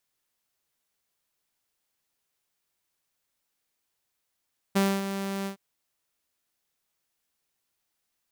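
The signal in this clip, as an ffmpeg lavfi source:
-f lavfi -i "aevalsrc='0.141*(2*mod(196*t,1)-1)':d=0.813:s=44100,afade=t=in:d=0.016,afade=t=out:st=0.016:d=0.251:silence=0.316,afade=t=out:st=0.71:d=0.103"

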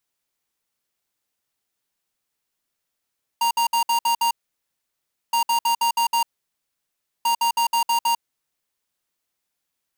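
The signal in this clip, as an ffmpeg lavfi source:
-f lavfi -i "aevalsrc='0.106*(2*lt(mod(934*t,1),0.5)-1)*clip(min(mod(mod(t,1.92),0.16),0.1-mod(mod(t,1.92),0.16))/0.005,0,1)*lt(mod(t,1.92),0.96)':d=5.76:s=44100"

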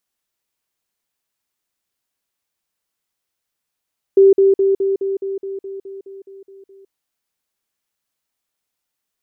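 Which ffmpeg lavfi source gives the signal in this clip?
-f lavfi -i "aevalsrc='pow(10,(-5.5-3*floor(t/0.21))/20)*sin(2*PI*390*t)*clip(min(mod(t,0.21),0.16-mod(t,0.21))/0.005,0,1)':d=2.73:s=44100"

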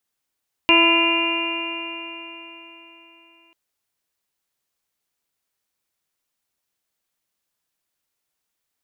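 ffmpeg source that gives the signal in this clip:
-f lavfi -i "aevalsrc='0.126*pow(10,-3*t/3.9)*sin(2*PI*332.27*t)+0.0596*pow(10,-3*t/3.9)*sin(2*PI*666.12*t)+0.119*pow(10,-3*t/3.9)*sin(2*PI*1003.15*t)+0.0251*pow(10,-3*t/3.9)*sin(2*PI*1344.89*t)+0.0178*pow(10,-3*t/3.9)*sin(2*PI*1692.87*t)+0.0376*pow(10,-3*t/3.9)*sin(2*PI*2048.57*t)+0.141*pow(10,-3*t/3.9)*sin(2*PI*2413.38*t)+0.211*pow(10,-3*t/3.9)*sin(2*PI*2788.67*t)':d=2.84:s=44100"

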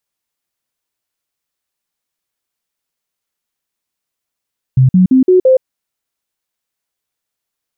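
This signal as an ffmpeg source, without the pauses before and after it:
-f lavfi -i "aevalsrc='0.596*clip(min(mod(t,0.17),0.12-mod(t,0.17))/0.005,0,1)*sin(2*PI*130*pow(2,floor(t/0.17)/2)*mod(t,0.17))':d=0.85:s=44100"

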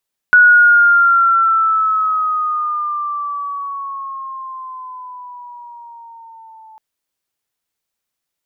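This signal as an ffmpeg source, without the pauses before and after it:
-f lavfi -i "aevalsrc='pow(10,(-4-34*t/6.45)/20)*sin(2*PI*1470*6.45/(-9*log(2)/12)*(exp(-9*log(2)/12*t/6.45)-1))':d=6.45:s=44100"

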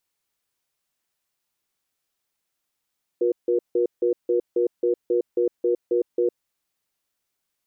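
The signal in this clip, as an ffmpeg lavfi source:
-f lavfi -i "aevalsrc='0.0944*(sin(2*PI*359*t)+sin(2*PI*480*t))*clip(min(mod(t,0.27),0.11-mod(t,0.27))/0.005,0,1)':d=3.14:s=44100"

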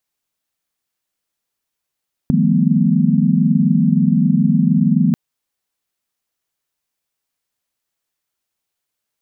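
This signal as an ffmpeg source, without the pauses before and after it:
-f lavfi -i "aevalsrc='0.133*(sin(2*PI*155.56*t)+sin(2*PI*174.61*t)+sin(2*PI*196*t)+sin(2*PI*220*t)+sin(2*PI*246.94*t))':d=2.84:s=44100"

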